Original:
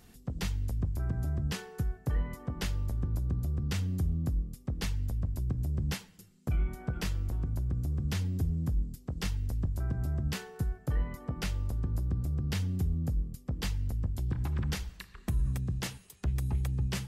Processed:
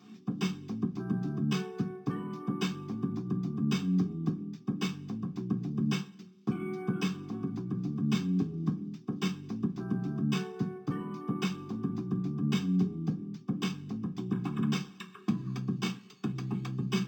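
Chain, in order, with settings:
high-pass filter 380 Hz 12 dB per octave
phaser with its sweep stopped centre 3,000 Hz, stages 8
convolution reverb RT60 0.30 s, pre-delay 3 ms, DRR −2 dB
linearly interpolated sample-rate reduction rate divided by 4×

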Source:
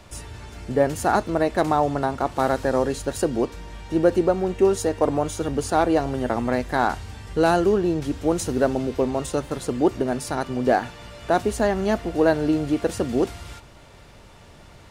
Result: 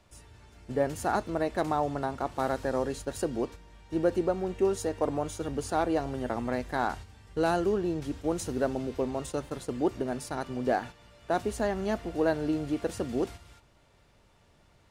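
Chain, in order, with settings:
noise gate −32 dBFS, range −7 dB
level −8 dB

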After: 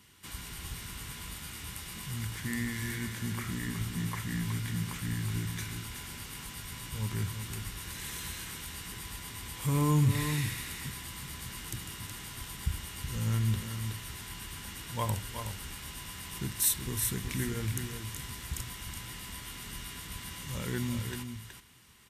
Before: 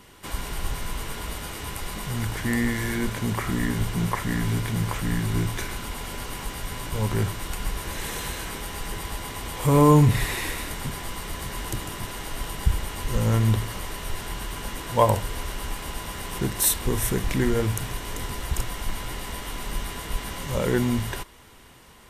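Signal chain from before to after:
high-pass filter 73 Hz 12 dB per octave
parametric band 590 Hz −14.5 dB 1.9 octaves
on a send: single-tap delay 371 ms −7.5 dB
on the sum: level −5.5 dB

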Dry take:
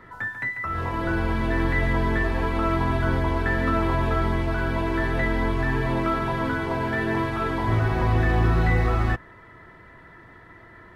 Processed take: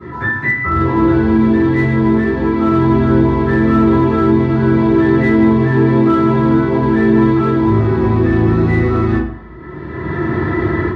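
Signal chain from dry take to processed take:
convolution reverb RT60 0.60 s, pre-delay 3 ms, DRR −18.5 dB
in parallel at −6 dB: hard clipping −1 dBFS, distortion −11 dB
on the sum: parametric band 97 Hz +6.5 dB 1.5 octaves
automatic gain control gain up to 11.5 dB
parametric band 350 Hz +6.5 dB 0.85 octaves
mains-hum notches 50/100 Hz
level −4.5 dB

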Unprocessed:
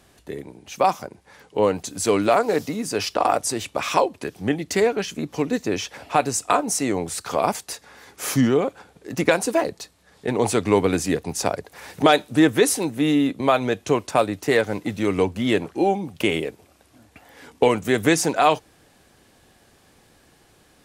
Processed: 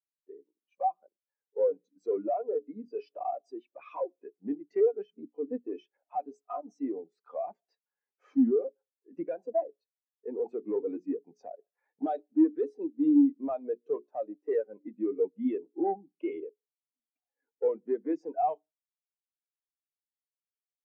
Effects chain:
Bessel high-pass filter 270 Hz, order 4
high-shelf EQ 9,500 Hz −8.5 dB
mains-hum notches 60/120/180/240/300/360/420 Hz
in parallel at +2 dB: brickwall limiter −12.5 dBFS, peak gain reduction 9.5 dB
on the sum: transient designer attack +2 dB, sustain −3 dB
soft clipping −15.5 dBFS, distortion −8 dB
high-frequency loss of the air 94 metres
on a send at −22.5 dB: convolution reverb RT60 0.45 s, pre-delay 96 ms
on the sum: every bin expanded away from the loudest bin 2.5 to 1

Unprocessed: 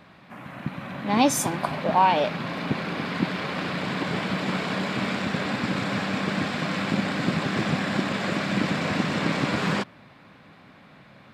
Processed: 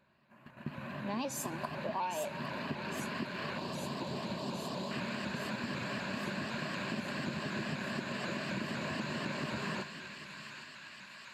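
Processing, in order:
0:03.58–0:04.91: Chebyshev band-stop filter 970–3,600 Hz, order 2
noise gate −37 dBFS, range −12 dB
EQ curve with evenly spaced ripples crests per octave 1.4, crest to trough 8 dB
on a send at −17.5 dB: convolution reverb RT60 3.4 s, pre-delay 3 ms
on the sum: downward compressor 4 to 1, threshold −27 dBFS, peak gain reduction 12.5 dB
delay with a high-pass on its return 810 ms, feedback 73%, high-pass 1,500 Hz, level −6.5 dB
pitch modulation by a square or saw wave saw up 4 Hz, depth 100 cents
level −8 dB

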